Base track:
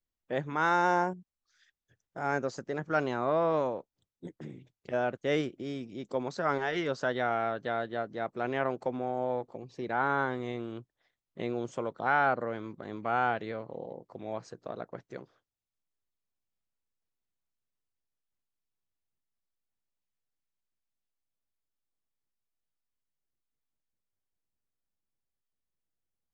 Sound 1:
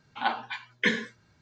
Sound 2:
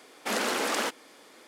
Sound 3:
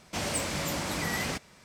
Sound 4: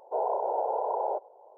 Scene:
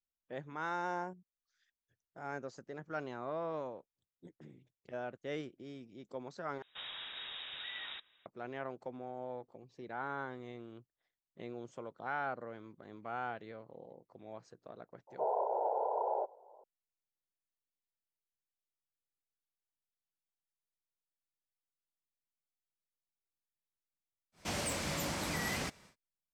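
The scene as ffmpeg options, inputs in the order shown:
-filter_complex "[3:a]asplit=2[a][b];[0:a]volume=-11.5dB[c];[a]lowpass=f=3.3k:t=q:w=0.5098,lowpass=f=3.3k:t=q:w=0.6013,lowpass=f=3.3k:t=q:w=0.9,lowpass=f=3.3k:t=q:w=2.563,afreqshift=-3900[d];[b]alimiter=limit=-21dB:level=0:latency=1:release=18[e];[c]asplit=2[f][g];[f]atrim=end=6.624[h];[d]atrim=end=1.64,asetpts=PTS-STARTPTS,volume=-12.5dB[i];[g]atrim=start=8.256[j];[4:a]atrim=end=1.57,asetpts=PTS-STARTPTS,volume=-5dB,afade=t=in:d=0.004:c=hsin,afade=t=out:st=1.566:d=0.004:c=hsin,adelay=15070[k];[e]atrim=end=1.64,asetpts=PTS-STARTPTS,volume=-5dB,afade=t=in:d=0.1,afade=t=out:st=1.54:d=0.1,adelay=24320[l];[h][i]acrossfade=d=0.004:c1=hsin:c2=hsin[m];[m][j]acrossfade=d=0.004:c1=hsin:c2=hsin[n];[n][k][l]amix=inputs=3:normalize=0"

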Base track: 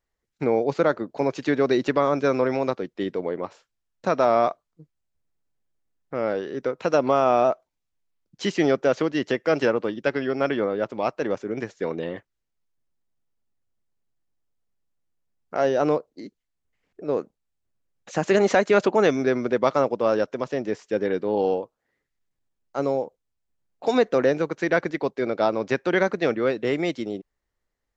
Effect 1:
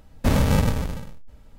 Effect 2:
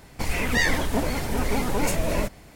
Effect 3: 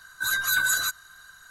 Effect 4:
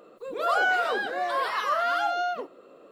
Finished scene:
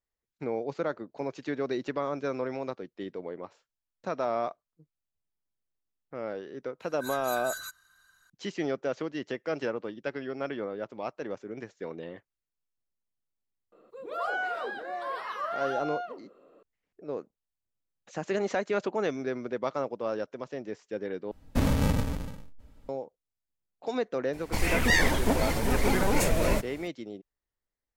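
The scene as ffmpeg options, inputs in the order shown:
-filter_complex "[0:a]volume=-10.5dB[a];[4:a]highshelf=f=2.6k:g=-8[b];[1:a]equalizer=f=280:w=5.8:g=7[c];[a]asplit=2[d][e];[d]atrim=end=21.314[f];[c]atrim=end=1.58,asetpts=PTS-STARTPTS,volume=-6.5dB[g];[e]atrim=start=22.886[h];[3:a]atrim=end=1.5,asetpts=PTS-STARTPTS,volume=-14dB,afade=t=in:d=0.004:c=hsin,afade=t=out:st=1.496:d=0.004:c=hsin,adelay=6800[i];[b]atrim=end=2.91,asetpts=PTS-STARTPTS,volume=-6.5dB,afade=t=in:d=0.004:c=hsin,afade=t=out:st=2.906:d=0.004:c=hsin,adelay=13720[j];[2:a]atrim=end=2.55,asetpts=PTS-STARTPTS,volume=-1dB,afade=t=in:d=0.004:c=hsin,afade=t=out:st=2.546:d=0.004:c=hsin,adelay=24330[k];[f][g]acrossfade=d=0.004:c1=hsin:c2=hsin[l];[l][h]acrossfade=d=0.004:c1=hsin:c2=hsin[m];[m][i][j][k]amix=inputs=4:normalize=0"

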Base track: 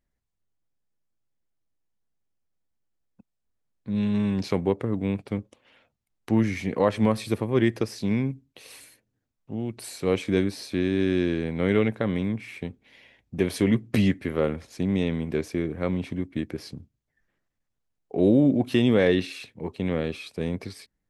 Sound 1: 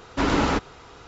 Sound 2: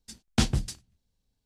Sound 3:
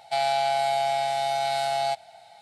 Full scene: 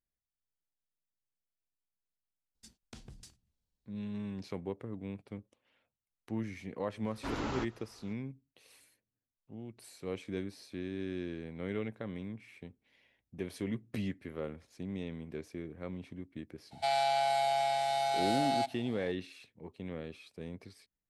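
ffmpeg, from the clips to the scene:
-filter_complex "[0:a]volume=-15dB[a];[2:a]acompressor=threshold=-37dB:ratio=6:attack=3.2:release=140:knee=1:detection=peak,atrim=end=1.45,asetpts=PTS-STARTPTS,volume=-10.5dB,afade=t=in:d=0.004:c=hsin,afade=t=out:st=1.446:d=0.004:c=hsin,adelay=2550[b];[1:a]atrim=end=1.07,asetpts=PTS-STARTPTS,volume=-15.5dB,afade=t=in:d=0.004:c=hsin,afade=t=out:st=1.066:d=0.004:c=hsin,adelay=311346S[c];[3:a]atrim=end=2.41,asetpts=PTS-STARTPTS,volume=-5.5dB,afade=t=in:d=0.004:c=hsin,afade=t=out:st=2.406:d=0.004:c=hsin,adelay=16710[d];[a][b][c][d]amix=inputs=4:normalize=0"

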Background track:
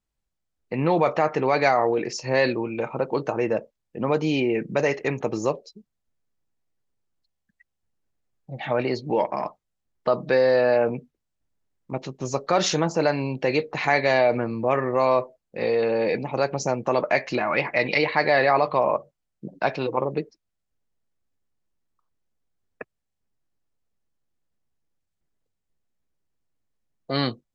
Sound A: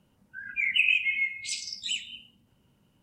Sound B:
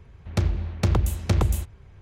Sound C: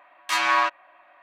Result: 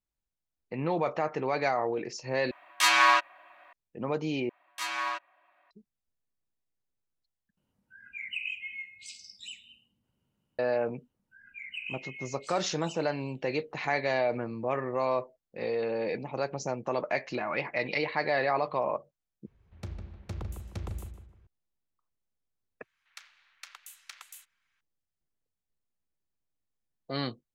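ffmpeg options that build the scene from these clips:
-filter_complex "[3:a]asplit=2[a][b];[1:a]asplit=2[c][d];[2:a]asplit=2[e][f];[0:a]volume=-8.5dB[g];[a]highshelf=f=2.6k:g=7[h];[b]highshelf=f=4.2k:g=6.5[i];[d]asplit=2[j][k];[k]adelay=390.7,volume=-18dB,highshelf=f=4k:g=-8.79[l];[j][l]amix=inputs=2:normalize=0[m];[e]asplit=2[n][o];[o]adelay=153,lowpass=f=2.4k:p=1,volume=-7dB,asplit=2[p][q];[q]adelay=153,lowpass=f=2.4k:p=1,volume=0.34,asplit=2[r][s];[s]adelay=153,lowpass=f=2.4k:p=1,volume=0.34,asplit=2[t][u];[u]adelay=153,lowpass=f=2.4k:p=1,volume=0.34[v];[n][p][r][t][v]amix=inputs=5:normalize=0[w];[f]highpass=f=1.4k:w=0.5412,highpass=f=1.4k:w=1.3066[x];[g]asplit=5[y][z][aa][ab][ac];[y]atrim=end=2.514[ad];[h]atrim=end=1.22,asetpts=PTS-STARTPTS,volume=-2dB[ae];[z]atrim=start=3.726:end=4.494[af];[i]atrim=end=1.22,asetpts=PTS-STARTPTS,volume=-12.5dB[ag];[aa]atrim=start=5.706:end=7.574[ah];[c]atrim=end=3.02,asetpts=PTS-STARTPTS,volume=-12.5dB[ai];[ab]atrim=start=10.586:end=19.464[aj];[w]atrim=end=2.01,asetpts=PTS-STARTPTS,volume=-17dB[ak];[ac]atrim=start=21.466[al];[m]atrim=end=3.02,asetpts=PTS-STARTPTS,volume=-16dB,afade=t=in:d=0.004:c=hsin,afade=t=out:st=3.016:d=0.004:c=hsin,adelay=484218S[am];[x]atrim=end=2.01,asetpts=PTS-STARTPTS,volume=-11dB,afade=t=in:d=0.004:c=hsin,afade=t=out:st=2.006:d=0.004:c=hsin,adelay=22800[an];[ad][ae]acrossfade=d=0.004:c1=hsin:c2=hsin[ao];[ao][af]acrossfade=d=0.004:c1=hsin:c2=hsin[ap];[ap][ag]acrossfade=d=0.004:c1=hsin:c2=hsin[aq];[aq][ah]acrossfade=d=0.004:c1=hsin:c2=hsin[ar];[ar][ai]acrossfade=d=0.004:c1=hsin:c2=hsin[as];[as][aj]acrossfade=d=0.004:c1=hsin:c2=hsin[at];[at][ak]acrossfade=d=0.004:c1=hsin:c2=hsin[au];[au][al]acrossfade=d=0.004:c1=hsin:c2=hsin[av];[av][am][an]amix=inputs=3:normalize=0"

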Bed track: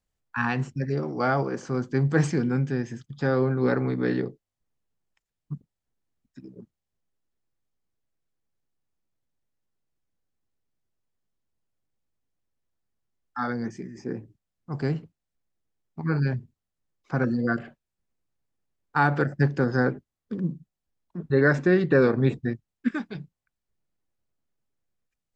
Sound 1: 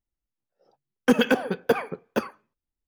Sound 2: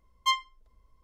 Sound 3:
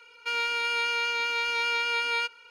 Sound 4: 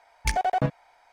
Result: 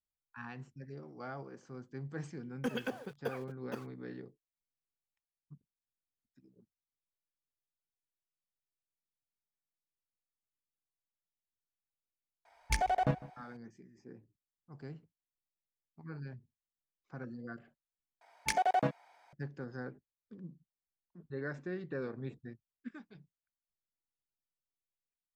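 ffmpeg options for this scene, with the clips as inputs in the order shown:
-filter_complex "[4:a]asplit=2[a][b];[0:a]volume=-20dB[c];[1:a]aeval=exprs='val(0)*gte(abs(val(0)),0.0106)':c=same[d];[a]asplit=2[e][f];[f]adelay=152,lowpass=f=2k:p=1,volume=-19dB,asplit=2[g][h];[h]adelay=152,lowpass=f=2k:p=1,volume=0.38,asplit=2[i][j];[j]adelay=152,lowpass=f=2k:p=1,volume=0.38[k];[e][g][i][k]amix=inputs=4:normalize=0[l];[b]highpass=190[m];[c]asplit=2[n][o];[n]atrim=end=18.214[p];[m]atrim=end=1.12,asetpts=PTS-STARTPTS,volume=-4.5dB[q];[o]atrim=start=19.326[r];[d]atrim=end=2.87,asetpts=PTS-STARTPTS,volume=-17dB,afade=t=in:d=0.004:c=hsin,afade=t=out:st=2.866:d=0.004:c=hsin,adelay=1560[s];[l]atrim=end=1.12,asetpts=PTS-STARTPTS,volume=-6dB,afade=t=in:d=0.004:c=hsin,afade=t=out:st=1.116:d=0.004:c=hsin,adelay=12450[t];[p][q]acrossfade=d=0.004:c1=hsin:c2=hsin[u];[u][r]acrossfade=d=0.004:c1=hsin:c2=hsin[v];[v][s][t]amix=inputs=3:normalize=0"

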